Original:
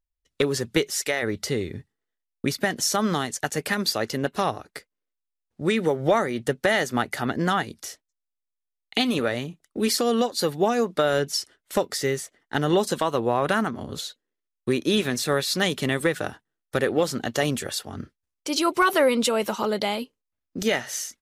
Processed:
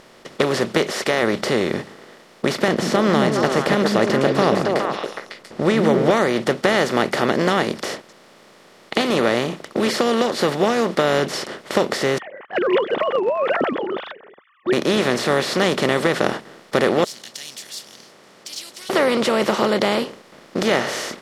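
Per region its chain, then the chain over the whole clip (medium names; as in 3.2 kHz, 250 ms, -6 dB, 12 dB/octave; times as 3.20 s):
2.68–6.11 s: tilt EQ -2.5 dB/octave + repeats whose band climbs or falls 138 ms, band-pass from 180 Hz, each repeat 1.4 oct, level -0.5 dB
12.18–14.73 s: formants replaced by sine waves + level-controlled noise filter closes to 1.2 kHz, open at -20.5 dBFS
17.04–18.90 s: inverse Chebyshev high-pass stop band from 1.3 kHz, stop band 70 dB + decimation joined by straight lines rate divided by 2×
whole clip: spectral levelling over time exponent 0.4; low-pass 3.2 kHz 6 dB/octave; bass shelf 120 Hz -11.5 dB; trim -1 dB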